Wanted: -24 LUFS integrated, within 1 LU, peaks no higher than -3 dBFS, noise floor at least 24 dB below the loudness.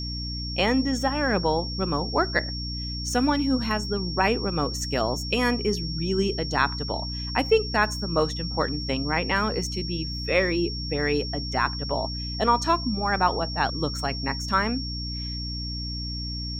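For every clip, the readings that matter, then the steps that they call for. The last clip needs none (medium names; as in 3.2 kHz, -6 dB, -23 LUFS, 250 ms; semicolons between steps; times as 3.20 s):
hum 60 Hz; highest harmonic 300 Hz; hum level -31 dBFS; steady tone 5.5 kHz; tone level -33 dBFS; loudness -25.5 LUFS; peak level -8.0 dBFS; loudness target -24.0 LUFS
-> hum notches 60/120/180/240/300 Hz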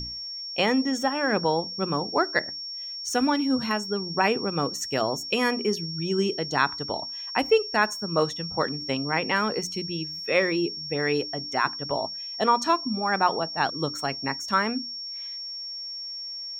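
hum not found; steady tone 5.5 kHz; tone level -33 dBFS
-> band-stop 5.5 kHz, Q 30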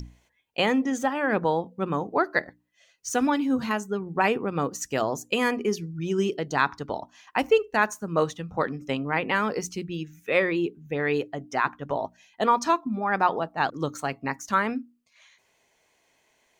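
steady tone not found; loudness -26.5 LUFS; peak level -8.5 dBFS; loudness target -24.0 LUFS
-> trim +2.5 dB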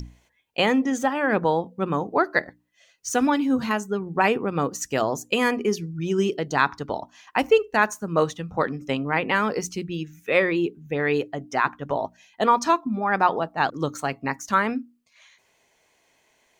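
loudness -24.0 LUFS; peak level -6.0 dBFS; noise floor -66 dBFS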